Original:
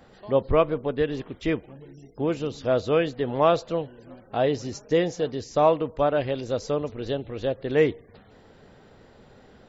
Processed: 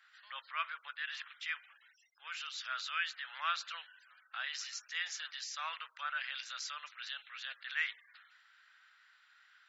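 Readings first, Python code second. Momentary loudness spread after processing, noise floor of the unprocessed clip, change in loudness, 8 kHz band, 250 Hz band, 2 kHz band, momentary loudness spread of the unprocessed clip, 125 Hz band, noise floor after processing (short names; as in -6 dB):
9 LU, -54 dBFS, -14.5 dB, n/a, under -40 dB, -1.5 dB, 9 LU, under -40 dB, -68 dBFS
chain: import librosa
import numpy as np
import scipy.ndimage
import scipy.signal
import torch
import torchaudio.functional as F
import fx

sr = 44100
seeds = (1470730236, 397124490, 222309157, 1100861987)

p1 = scipy.signal.sosfilt(scipy.signal.ellip(4, 1.0, 80, 1400.0, 'highpass', fs=sr, output='sos'), x)
p2 = fx.high_shelf(p1, sr, hz=4200.0, db=-11.0)
p3 = fx.over_compress(p2, sr, threshold_db=-50.0, ratio=-1.0)
p4 = p2 + F.gain(torch.from_numpy(p3), -1.0).numpy()
p5 = fx.band_widen(p4, sr, depth_pct=40)
y = F.gain(torch.from_numpy(p5), -1.0).numpy()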